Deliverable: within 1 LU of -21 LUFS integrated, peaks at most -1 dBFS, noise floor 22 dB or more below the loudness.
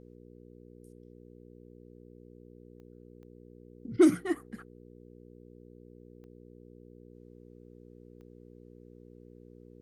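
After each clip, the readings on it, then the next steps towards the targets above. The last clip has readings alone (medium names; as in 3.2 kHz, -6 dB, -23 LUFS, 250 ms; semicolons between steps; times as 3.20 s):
clicks found 4; hum 60 Hz; highest harmonic 480 Hz; hum level -51 dBFS; loudness -27.0 LUFS; peak level -11.5 dBFS; loudness target -21.0 LUFS
-> de-click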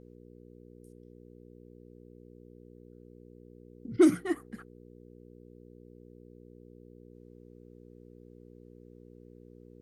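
clicks found 0; hum 60 Hz; highest harmonic 480 Hz; hum level -51 dBFS
-> de-hum 60 Hz, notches 8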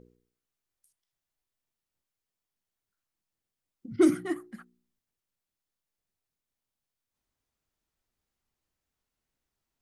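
hum not found; loudness -27.0 LUFS; peak level -11.0 dBFS; loudness target -21.0 LUFS
-> trim +6 dB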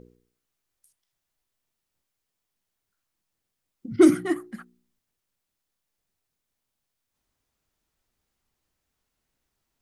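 loudness -21.0 LUFS; peak level -5.0 dBFS; noise floor -83 dBFS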